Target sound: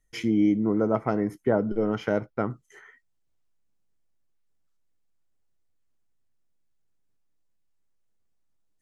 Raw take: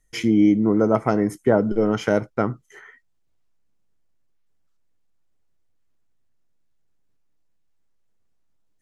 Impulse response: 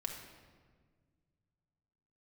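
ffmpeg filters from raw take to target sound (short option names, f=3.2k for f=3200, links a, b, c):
-af "asetnsamples=n=441:p=0,asendcmd='0.8 equalizer g -13;2.51 equalizer g 2.5',equalizer=f=8.1k:w=1.1:g=-3.5,volume=-5.5dB"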